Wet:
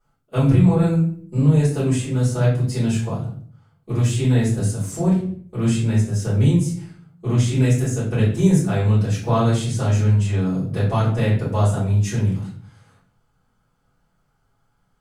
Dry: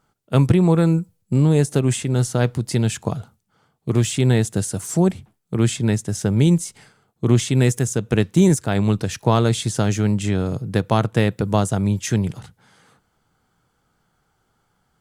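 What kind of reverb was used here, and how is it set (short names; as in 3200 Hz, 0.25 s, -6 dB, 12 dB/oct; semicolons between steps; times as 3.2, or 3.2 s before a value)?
shoebox room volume 61 m³, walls mixed, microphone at 3.5 m; gain -17 dB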